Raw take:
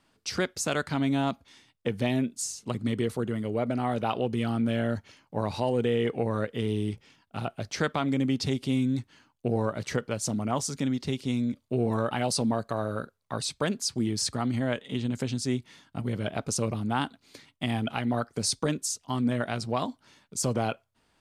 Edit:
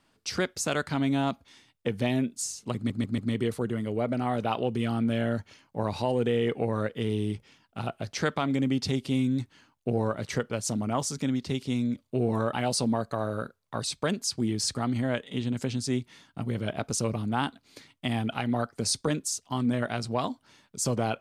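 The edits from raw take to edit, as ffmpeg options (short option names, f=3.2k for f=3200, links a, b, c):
-filter_complex "[0:a]asplit=4[a][b][c][d];[a]atrim=end=2.902[e];[b]atrim=start=2.758:end=2.902[f];[c]atrim=start=2.758:end=2.902[g];[d]atrim=start=2.758[h];[e][f]acrossfade=d=0.004:c1=hsin:c2=hsin[i];[i][g]acrossfade=d=0.004:c1=hsin:c2=hsin[j];[j][h]acrossfade=d=0.004:c1=hsin:c2=hsin"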